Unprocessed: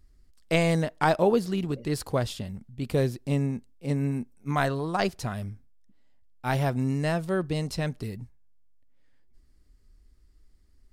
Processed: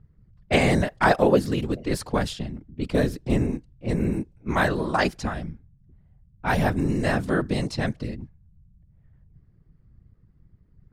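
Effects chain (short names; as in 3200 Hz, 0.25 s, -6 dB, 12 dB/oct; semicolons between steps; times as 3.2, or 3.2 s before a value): whisperiser; dynamic EQ 1700 Hz, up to +5 dB, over -47 dBFS, Q 2.6; low-pass opened by the level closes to 1400 Hz, open at -23.5 dBFS; gain +3 dB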